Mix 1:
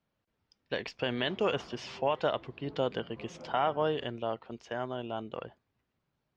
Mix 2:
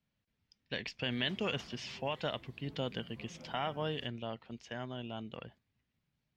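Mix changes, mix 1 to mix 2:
background: remove air absorption 210 m; master: add band shelf 670 Hz -8.5 dB 2.5 oct

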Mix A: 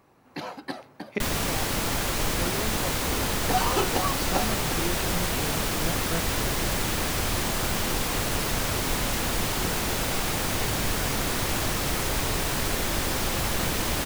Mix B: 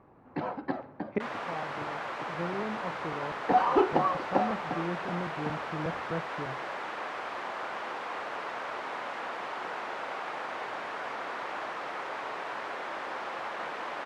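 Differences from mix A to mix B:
first sound: send +11.5 dB; second sound: add HPF 740 Hz 12 dB/oct; master: add LPF 1400 Hz 12 dB/oct

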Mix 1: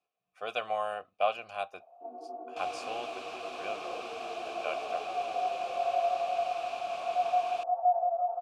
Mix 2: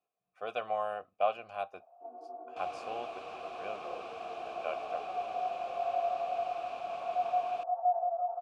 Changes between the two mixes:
first sound: add tilt +4 dB/oct; master: add high shelf 2400 Hz -12 dB

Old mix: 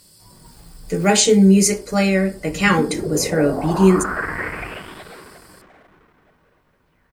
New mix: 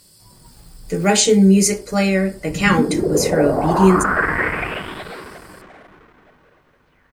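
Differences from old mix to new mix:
first sound: send -10.5 dB; second sound +6.5 dB

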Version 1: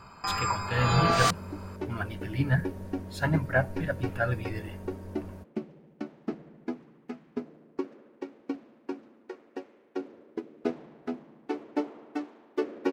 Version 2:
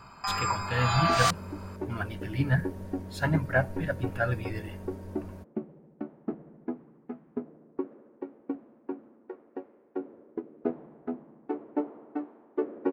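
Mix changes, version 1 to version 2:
first sound: add brick-wall FIR high-pass 590 Hz; second sound: add LPF 1200 Hz 12 dB/oct

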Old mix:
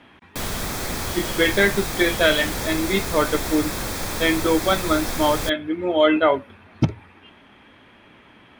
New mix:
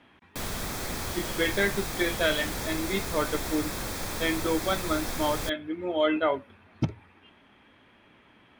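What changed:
speech -8.0 dB; background -6.0 dB

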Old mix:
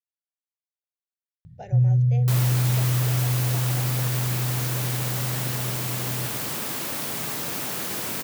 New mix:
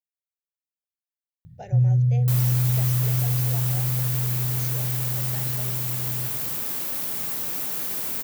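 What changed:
second sound -6.5 dB; master: add high shelf 9800 Hz +11.5 dB

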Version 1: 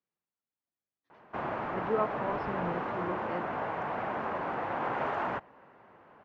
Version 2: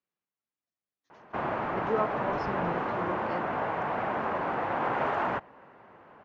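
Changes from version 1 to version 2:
speech: remove air absorption 260 m; background +3.5 dB

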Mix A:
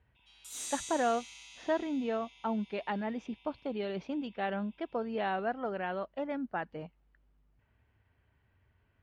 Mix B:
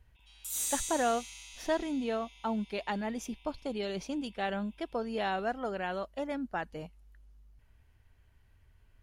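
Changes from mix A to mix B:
speech: remove BPF 100–2900 Hz; master: remove air absorption 66 m

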